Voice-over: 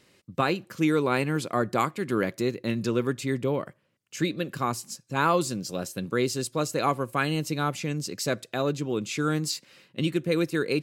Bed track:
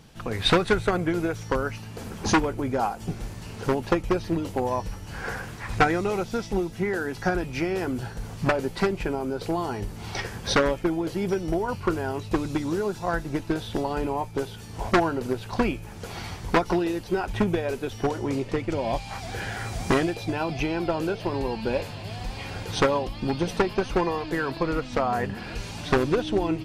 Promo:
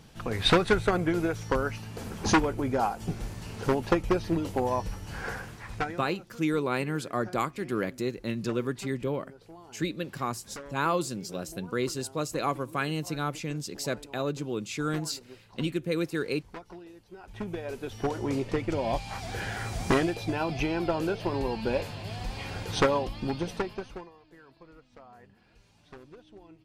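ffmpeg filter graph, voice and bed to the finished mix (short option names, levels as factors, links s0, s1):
-filter_complex "[0:a]adelay=5600,volume=0.631[s0];[1:a]volume=8.41,afade=t=out:st=5.1:d=0.97:silence=0.0944061,afade=t=in:st=17.18:d=1.15:silence=0.1,afade=t=out:st=23.02:d=1.08:silence=0.0562341[s1];[s0][s1]amix=inputs=2:normalize=0"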